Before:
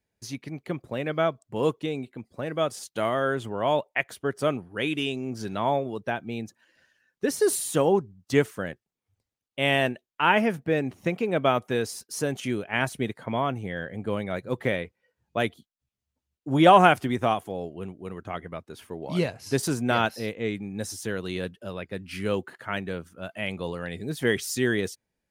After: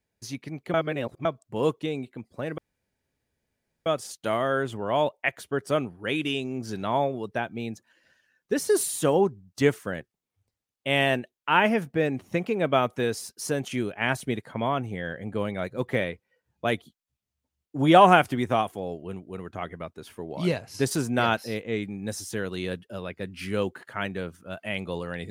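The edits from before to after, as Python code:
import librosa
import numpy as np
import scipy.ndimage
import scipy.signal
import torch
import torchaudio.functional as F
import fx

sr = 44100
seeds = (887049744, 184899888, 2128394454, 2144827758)

y = fx.edit(x, sr, fx.reverse_span(start_s=0.74, length_s=0.51),
    fx.insert_room_tone(at_s=2.58, length_s=1.28), tone=tone)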